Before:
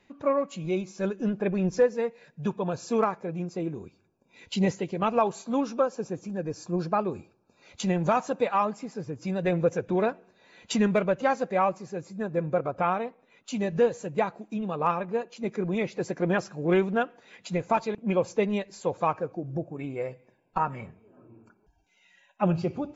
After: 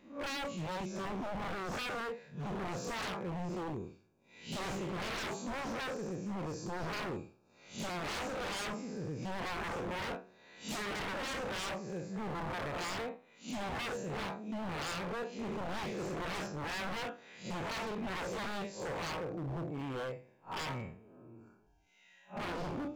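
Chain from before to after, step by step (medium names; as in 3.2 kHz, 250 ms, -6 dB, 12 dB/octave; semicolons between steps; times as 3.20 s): spectral blur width 126 ms; wavefolder -33.5 dBFS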